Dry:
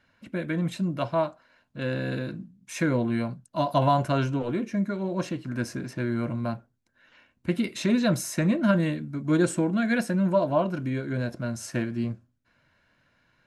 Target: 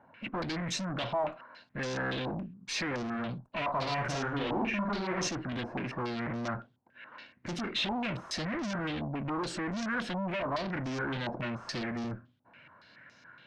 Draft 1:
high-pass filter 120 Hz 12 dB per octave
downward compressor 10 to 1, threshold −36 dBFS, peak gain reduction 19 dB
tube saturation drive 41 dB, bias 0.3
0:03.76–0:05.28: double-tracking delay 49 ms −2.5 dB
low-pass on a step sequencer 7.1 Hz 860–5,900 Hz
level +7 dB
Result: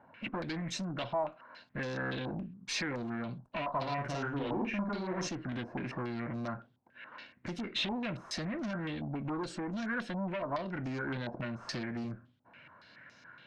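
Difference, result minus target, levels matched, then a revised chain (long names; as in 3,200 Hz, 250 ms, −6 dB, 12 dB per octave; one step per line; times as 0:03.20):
downward compressor: peak gain reduction +10.5 dB
high-pass filter 120 Hz 12 dB per octave
downward compressor 10 to 1, threshold −24.5 dBFS, peak gain reduction 8.5 dB
tube saturation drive 41 dB, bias 0.3
0:03.76–0:05.28: double-tracking delay 49 ms −2.5 dB
low-pass on a step sequencer 7.1 Hz 860–5,900 Hz
level +7 dB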